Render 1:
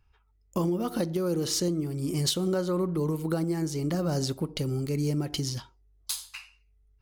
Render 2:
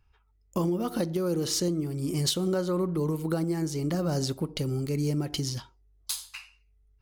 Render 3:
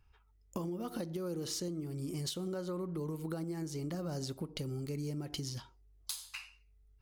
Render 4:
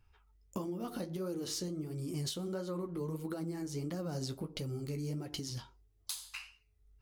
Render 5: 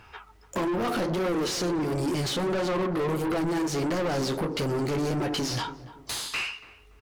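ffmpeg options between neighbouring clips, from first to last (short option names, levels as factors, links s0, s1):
-af anull
-af "acompressor=threshold=0.0126:ratio=3,volume=0.891"
-af "flanger=delay=9:depth=7:regen=-37:speed=1.5:shape=sinusoidal,volume=1.58"
-filter_complex "[0:a]asplit=2[s0][s1];[s1]highpass=f=720:p=1,volume=28.2,asoftclip=type=tanh:threshold=0.0841[s2];[s0][s2]amix=inputs=2:normalize=0,lowpass=f=1900:p=1,volume=0.501,asoftclip=type=tanh:threshold=0.0251,asplit=2[s3][s4];[s4]adelay=287,lowpass=f=980:p=1,volume=0.224,asplit=2[s5][s6];[s6]adelay=287,lowpass=f=980:p=1,volume=0.35,asplit=2[s7][s8];[s8]adelay=287,lowpass=f=980:p=1,volume=0.35[s9];[s3][s5][s7][s9]amix=inputs=4:normalize=0,volume=2.37"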